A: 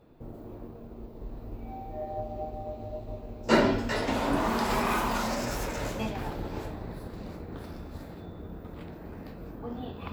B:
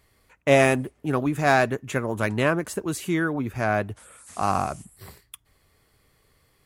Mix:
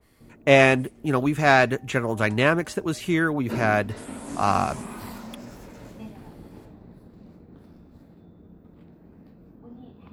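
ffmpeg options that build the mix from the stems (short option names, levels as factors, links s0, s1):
-filter_complex "[0:a]equalizer=f=200:w=0.69:g=10.5,volume=0.178[s0];[1:a]adynamicequalizer=threshold=0.0251:dfrequency=1800:dqfactor=0.7:tfrequency=1800:tqfactor=0.7:attack=5:release=100:ratio=0.375:range=2.5:mode=boostabove:tftype=highshelf,volume=1.19[s1];[s0][s1]amix=inputs=2:normalize=0,acrossover=split=5400[s2][s3];[s3]acompressor=threshold=0.00631:ratio=4:attack=1:release=60[s4];[s2][s4]amix=inputs=2:normalize=0"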